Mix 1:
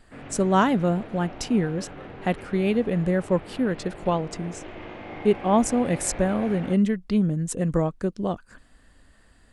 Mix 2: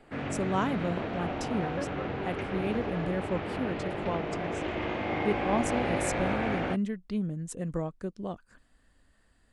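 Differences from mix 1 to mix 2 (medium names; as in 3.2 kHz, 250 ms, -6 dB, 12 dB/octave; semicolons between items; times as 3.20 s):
speech -9.5 dB; background +7.0 dB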